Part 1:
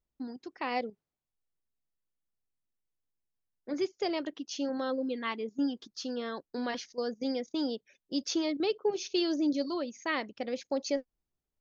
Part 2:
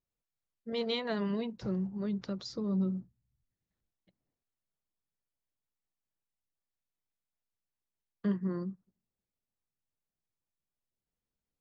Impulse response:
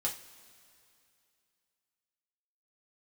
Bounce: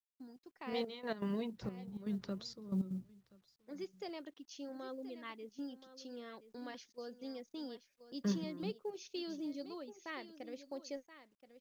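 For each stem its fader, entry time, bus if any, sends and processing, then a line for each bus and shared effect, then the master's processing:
-13.5 dB, 0.00 s, no send, echo send -13.5 dB, gate -50 dBFS, range -7 dB; vibrato 1.8 Hz 5.5 cents
-4.0 dB, 0.00 s, no send, echo send -24 dB, trance gate "..x.xxxxx" 160 bpm -12 dB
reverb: none
echo: delay 1026 ms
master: companded quantiser 8-bit

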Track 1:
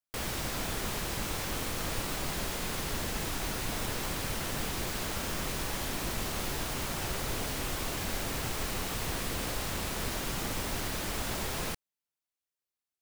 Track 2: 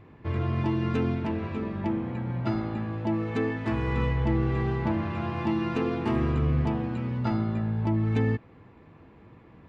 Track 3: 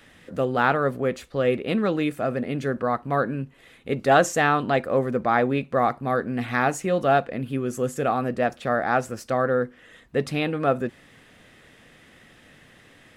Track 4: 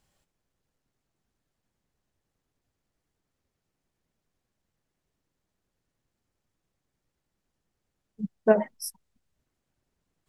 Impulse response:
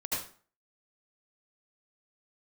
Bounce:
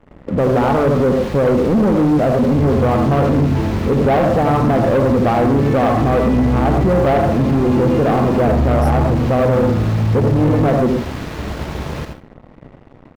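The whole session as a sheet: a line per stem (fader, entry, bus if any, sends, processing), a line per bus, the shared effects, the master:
-9.0 dB, 0.30 s, send -3.5 dB, median filter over 5 samples; high-pass 56 Hz 24 dB/octave
-7.5 dB, 2.30 s, send -4.5 dB, none
+0.5 dB, 0.00 s, send -6.5 dB, compression 2:1, threshold -24 dBFS, peak gain reduction 6.5 dB; Savitzky-Golay filter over 65 samples
-4.5 dB, 0.00 s, no send, compression, threshold -23 dBFS, peak gain reduction 10 dB; hum 50 Hz, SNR 17 dB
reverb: on, RT60 0.40 s, pre-delay 67 ms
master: tilt EQ -2 dB/octave; waveshaping leveller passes 3; peak limiter -9.5 dBFS, peak gain reduction 4 dB

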